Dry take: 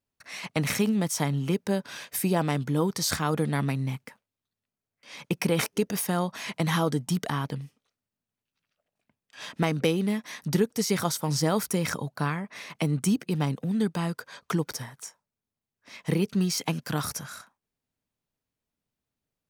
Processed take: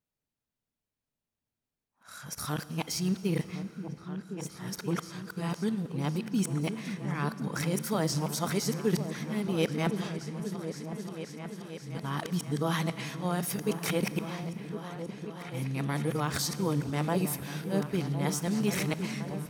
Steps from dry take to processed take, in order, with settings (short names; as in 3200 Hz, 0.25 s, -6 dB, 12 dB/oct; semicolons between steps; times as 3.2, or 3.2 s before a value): whole clip reversed; repeats that get brighter 0.53 s, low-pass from 200 Hz, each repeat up 2 oct, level -6 dB; Schroeder reverb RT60 2.7 s, combs from 27 ms, DRR 14.5 dB; gain -4.5 dB